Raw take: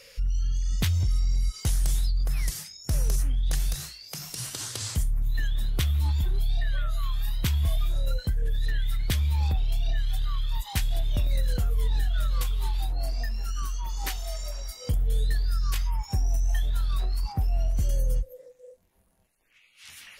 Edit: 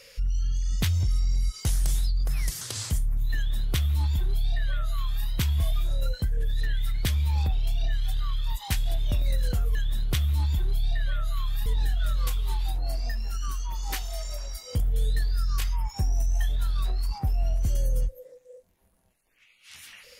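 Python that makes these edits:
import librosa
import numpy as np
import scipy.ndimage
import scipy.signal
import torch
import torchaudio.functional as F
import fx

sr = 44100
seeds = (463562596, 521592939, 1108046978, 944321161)

y = fx.edit(x, sr, fx.cut(start_s=2.61, length_s=2.05),
    fx.duplicate(start_s=5.41, length_s=1.91, to_s=11.8), tone=tone)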